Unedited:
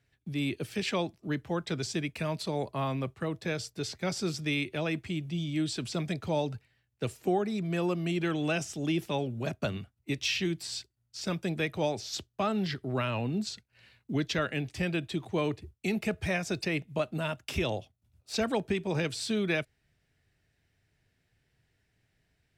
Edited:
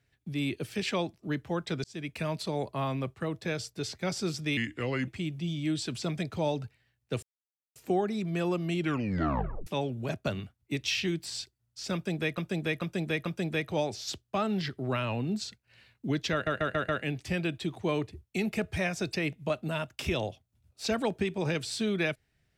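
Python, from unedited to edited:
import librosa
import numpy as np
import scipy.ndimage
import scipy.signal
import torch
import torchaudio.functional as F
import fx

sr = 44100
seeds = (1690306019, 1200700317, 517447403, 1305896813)

y = fx.edit(x, sr, fx.fade_in_span(start_s=1.84, length_s=0.31),
    fx.speed_span(start_s=4.57, length_s=0.41, speed=0.81),
    fx.insert_silence(at_s=7.13, length_s=0.53),
    fx.tape_stop(start_s=8.19, length_s=0.85),
    fx.repeat(start_s=11.31, length_s=0.44, count=4),
    fx.stutter(start_s=14.38, slice_s=0.14, count=5), tone=tone)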